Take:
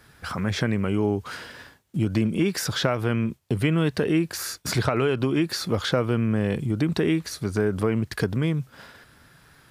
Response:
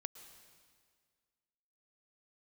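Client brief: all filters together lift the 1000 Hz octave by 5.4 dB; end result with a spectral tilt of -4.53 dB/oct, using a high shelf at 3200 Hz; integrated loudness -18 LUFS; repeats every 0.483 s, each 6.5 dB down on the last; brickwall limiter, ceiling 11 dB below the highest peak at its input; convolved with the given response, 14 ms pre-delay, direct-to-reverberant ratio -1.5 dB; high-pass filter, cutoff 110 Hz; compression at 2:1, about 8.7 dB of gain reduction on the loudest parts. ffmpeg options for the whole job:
-filter_complex "[0:a]highpass=110,equalizer=f=1k:t=o:g=7,highshelf=f=3.2k:g=3,acompressor=threshold=-33dB:ratio=2,alimiter=limit=-22.5dB:level=0:latency=1,aecho=1:1:483|966|1449|1932|2415|2898:0.473|0.222|0.105|0.0491|0.0231|0.0109,asplit=2[a][b];[1:a]atrim=start_sample=2205,adelay=14[c];[b][c]afir=irnorm=-1:irlink=0,volume=5dB[d];[a][d]amix=inputs=2:normalize=0,volume=11dB"

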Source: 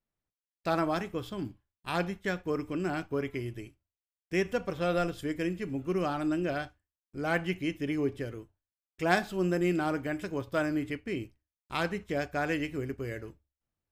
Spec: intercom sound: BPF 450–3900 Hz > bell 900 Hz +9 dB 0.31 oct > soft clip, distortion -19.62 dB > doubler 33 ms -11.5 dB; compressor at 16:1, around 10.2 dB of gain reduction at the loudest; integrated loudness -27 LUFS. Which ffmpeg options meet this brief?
-filter_complex "[0:a]acompressor=threshold=-30dB:ratio=16,highpass=450,lowpass=3.9k,equalizer=f=900:t=o:w=0.31:g=9,asoftclip=threshold=-24.5dB,asplit=2[a][b];[b]adelay=33,volume=-11.5dB[c];[a][c]amix=inputs=2:normalize=0,volume=12.5dB"

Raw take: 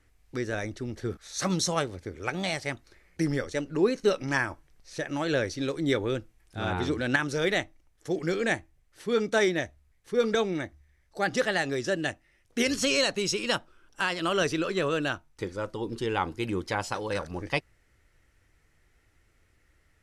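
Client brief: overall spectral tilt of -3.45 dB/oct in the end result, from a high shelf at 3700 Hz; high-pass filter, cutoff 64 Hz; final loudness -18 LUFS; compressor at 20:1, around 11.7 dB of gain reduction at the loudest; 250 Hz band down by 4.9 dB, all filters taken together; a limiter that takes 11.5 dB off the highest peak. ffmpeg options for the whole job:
-af "highpass=64,equalizer=f=250:t=o:g=-7,highshelf=f=3.7k:g=7,acompressor=threshold=-31dB:ratio=20,volume=20dB,alimiter=limit=-5.5dB:level=0:latency=1"

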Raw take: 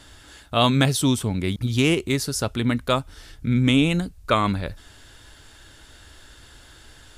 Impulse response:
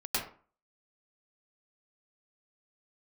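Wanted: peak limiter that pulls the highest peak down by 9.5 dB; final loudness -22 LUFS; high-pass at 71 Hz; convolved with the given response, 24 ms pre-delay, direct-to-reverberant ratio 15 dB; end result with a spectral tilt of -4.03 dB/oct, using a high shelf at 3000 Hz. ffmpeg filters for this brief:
-filter_complex "[0:a]highpass=71,highshelf=f=3k:g=8.5,alimiter=limit=-10dB:level=0:latency=1,asplit=2[a][b];[1:a]atrim=start_sample=2205,adelay=24[c];[b][c]afir=irnorm=-1:irlink=0,volume=-21.5dB[d];[a][d]amix=inputs=2:normalize=0,volume=0.5dB"

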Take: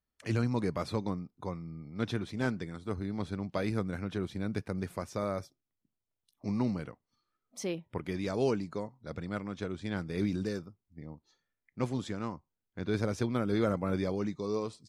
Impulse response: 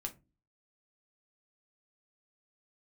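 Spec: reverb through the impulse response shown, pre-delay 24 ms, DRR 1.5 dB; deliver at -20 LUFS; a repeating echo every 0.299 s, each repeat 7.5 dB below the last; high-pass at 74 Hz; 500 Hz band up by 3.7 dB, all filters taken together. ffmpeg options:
-filter_complex "[0:a]highpass=74,equalizer=f=500:t=o:g=4.5,aecho=1:1:299|598|897|1196|1495:0.422|0.177|0.0744|0.0312|0.0131,asplit=2[a][b];[1:a]atrim=start_sample=2205,adelay=24[c];[b][c]afir=irnorm=-1:irlink=0,volume=0dB[d];[a][d]amix=inputs=2:normalize=0,volume=10dB"

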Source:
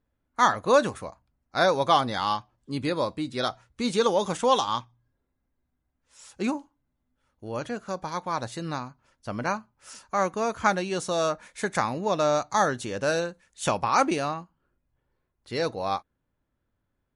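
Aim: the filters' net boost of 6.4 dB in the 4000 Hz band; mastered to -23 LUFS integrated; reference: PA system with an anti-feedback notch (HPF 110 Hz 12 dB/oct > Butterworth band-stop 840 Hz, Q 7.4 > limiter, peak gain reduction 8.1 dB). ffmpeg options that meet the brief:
-af "highpass=110,asuperstop=centerf=840:order=8:qfactor=7.4,equalizer=f=4k:t=o:g=7.5,volume=5dB,alimiter=limit=-10dB:level=0:latency=1"

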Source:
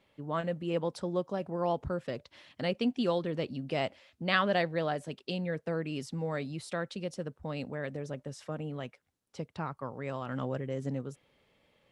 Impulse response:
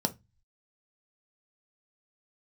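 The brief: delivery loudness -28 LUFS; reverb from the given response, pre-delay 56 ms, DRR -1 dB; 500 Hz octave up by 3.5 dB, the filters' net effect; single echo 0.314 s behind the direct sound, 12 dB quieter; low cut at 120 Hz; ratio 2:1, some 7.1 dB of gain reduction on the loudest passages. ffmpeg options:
-filter_complex "[0:a]highpass=120,equalizer=f=500:t=o:g=4,acompressor=threshold=-35dB:ratio=2,aecho=1:1:314:0.251,asplit=2[a][b];[1:a]atrim=start_sample=2205,adelay=56[c];[b][c]afir=irnorm=-1:irlink=0,volume=-5dB[d];[a][d]amix=inputs=2:normalize=0,volume=2dB"

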